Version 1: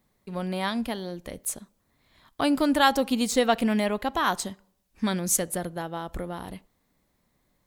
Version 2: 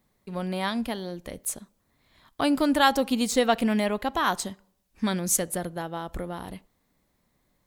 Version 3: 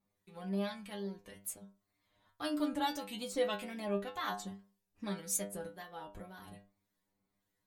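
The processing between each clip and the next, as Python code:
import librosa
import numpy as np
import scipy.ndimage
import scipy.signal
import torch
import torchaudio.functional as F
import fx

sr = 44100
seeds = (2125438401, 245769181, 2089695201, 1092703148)

y1 = x
y2 = fx.wow_flutter(y1, sr, seeds[0], rate_hz=2.1, depth_cents=120.0)
y2 = fx.stiff_resonator(y2, sr, f0_hz=98.0, decay_s=0.35, stiffness=0.002)
y2 = fx.harmonic_tremolo(y2, sr, hz=1.8, depth_pct=50, crossover_hz=1300.0)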